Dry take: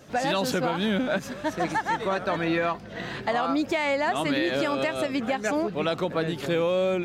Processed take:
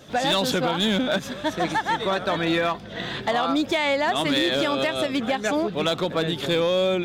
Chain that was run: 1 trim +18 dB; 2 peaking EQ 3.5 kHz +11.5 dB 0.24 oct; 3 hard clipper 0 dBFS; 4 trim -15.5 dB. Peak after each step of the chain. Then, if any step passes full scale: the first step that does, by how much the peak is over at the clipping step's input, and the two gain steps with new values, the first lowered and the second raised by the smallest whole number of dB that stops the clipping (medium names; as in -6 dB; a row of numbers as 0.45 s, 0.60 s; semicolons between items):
+4.0 dBFS, +6.5 dBFS, 0.0 dBFS, -15.5 dBFS; step 1, 6.5 dB; step 1 +11 dB, step 4 -8.5 dB